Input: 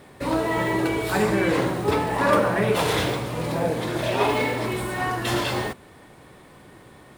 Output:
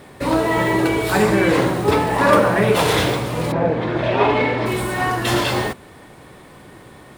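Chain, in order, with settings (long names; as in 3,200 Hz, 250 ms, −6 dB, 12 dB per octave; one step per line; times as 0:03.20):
0:03.51–0:04.65: low-pass filter 2,100 Hz → 3,600 Hz 12 dB per octave
level +5.5 dB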